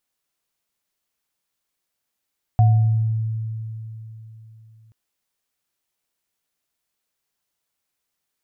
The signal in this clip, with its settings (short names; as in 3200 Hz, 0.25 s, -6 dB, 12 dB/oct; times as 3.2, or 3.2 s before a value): sine partials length 2.33 s, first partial 111 Hz, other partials 726 Hz, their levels -11.5 dB, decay 3.57 s, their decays 0.74 s, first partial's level -10 dB